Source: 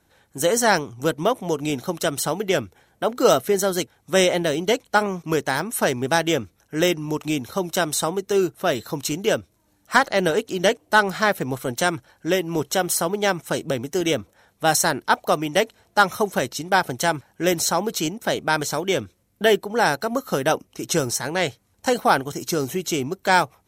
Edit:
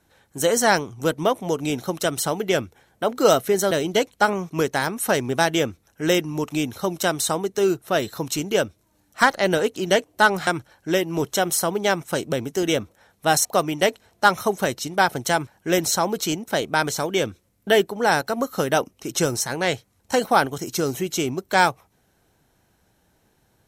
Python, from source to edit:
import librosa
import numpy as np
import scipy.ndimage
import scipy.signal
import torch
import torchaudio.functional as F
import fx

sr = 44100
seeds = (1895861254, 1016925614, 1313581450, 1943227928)

y = fx.edit(x, sr, fx.cut(start_s=3.71, length_s=0.73),
    fx.cut(start_s=11.2, length_s=0.65),
    fx.cut(start_s=14.83, length_s=0.36), tone=tone)